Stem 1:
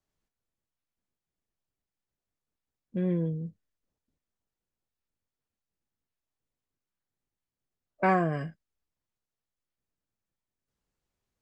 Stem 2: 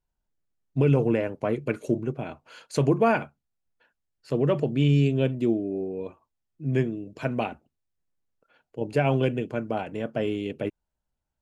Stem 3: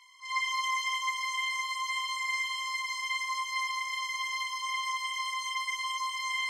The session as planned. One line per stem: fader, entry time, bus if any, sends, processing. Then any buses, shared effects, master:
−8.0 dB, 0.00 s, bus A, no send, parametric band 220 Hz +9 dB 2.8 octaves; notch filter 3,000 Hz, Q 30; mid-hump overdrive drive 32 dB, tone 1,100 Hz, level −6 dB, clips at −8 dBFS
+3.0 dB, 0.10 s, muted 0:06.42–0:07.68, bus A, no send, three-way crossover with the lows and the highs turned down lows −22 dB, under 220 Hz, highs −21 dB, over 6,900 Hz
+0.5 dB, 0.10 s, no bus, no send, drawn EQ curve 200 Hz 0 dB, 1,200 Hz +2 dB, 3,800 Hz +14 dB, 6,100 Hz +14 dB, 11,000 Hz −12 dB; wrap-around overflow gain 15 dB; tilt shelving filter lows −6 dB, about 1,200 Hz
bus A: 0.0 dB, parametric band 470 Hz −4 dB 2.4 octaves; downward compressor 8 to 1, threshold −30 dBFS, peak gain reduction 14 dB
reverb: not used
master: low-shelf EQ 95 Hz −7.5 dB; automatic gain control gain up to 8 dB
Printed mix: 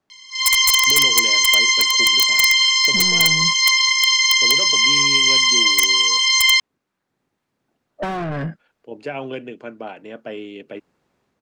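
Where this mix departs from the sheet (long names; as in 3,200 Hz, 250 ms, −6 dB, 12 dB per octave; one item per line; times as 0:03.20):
stem 2 +3.0 dB → −7.5 dB
master: missing low-shelf EQ 95 Hz −7.5 dB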